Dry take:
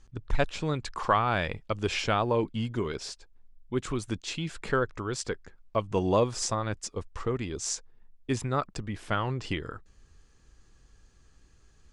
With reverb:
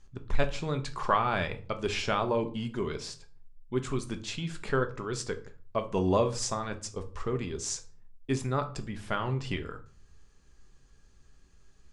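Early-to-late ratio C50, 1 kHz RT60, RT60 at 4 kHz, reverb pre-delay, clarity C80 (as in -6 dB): 15.5 dB, 0.40 s, 0.35 s, 5 ms, 20.5 dB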